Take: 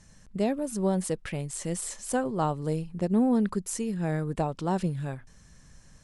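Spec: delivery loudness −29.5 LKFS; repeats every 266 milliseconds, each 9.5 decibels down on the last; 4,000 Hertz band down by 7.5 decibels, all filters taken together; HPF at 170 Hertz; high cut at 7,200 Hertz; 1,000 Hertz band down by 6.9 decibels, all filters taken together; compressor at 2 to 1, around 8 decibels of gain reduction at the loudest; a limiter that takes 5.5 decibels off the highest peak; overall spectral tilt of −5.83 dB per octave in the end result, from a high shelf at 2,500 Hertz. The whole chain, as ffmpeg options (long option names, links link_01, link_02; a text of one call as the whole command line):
ffmpeg -i in.wav -af "highpass=170,lowpass=7200,equalizer=frequency=1000:width_type=o:gain=-9,highshelf=frequency=2500:gain=-5.5,equalizer=frequency=4000:width_type=o:gain=-4,acompressor=threshold=-36dB:ratio=2,alimiter=level_in=5.5dB:limit=-24dB:level=0:latency=1,volume=-5.5dB,aecho=1:1:266|532|798|1064:0.335|0.111|0.0365|0.012,volume=9.5dB" out.wav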